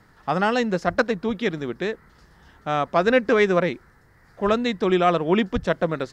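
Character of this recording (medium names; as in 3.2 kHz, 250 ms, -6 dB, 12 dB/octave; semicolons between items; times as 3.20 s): noise floor -56 dBFS; spectral tilt -4.5 dB/octave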